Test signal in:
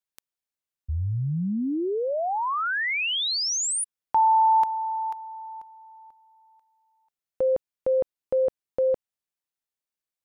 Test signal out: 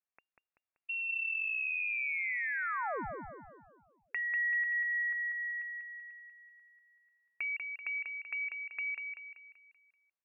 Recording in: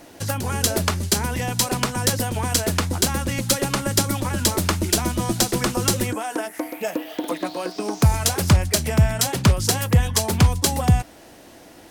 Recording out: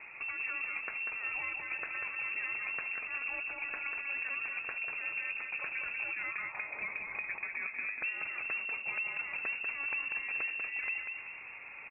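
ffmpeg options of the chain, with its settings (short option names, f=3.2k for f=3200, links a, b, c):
-af "acompressor=threshold=-32dB:ratio=6:attack=5.8:release=181:knee=1:detection=rms,aecho=1:1:192|384|576|768|960|1152:0.562|0.253|0.114|0.0512|0.0231|0.0104,lowpass=f=2.4k:t=q:w=0.5098,lowpass=f=2.4k:t=q:w=0.6013,lowpass=f=2.4k:t=q:w=0.9,lowpass=f=2.4k:t=q:w=2.563,afreqshift=-2800,volume=-3dB"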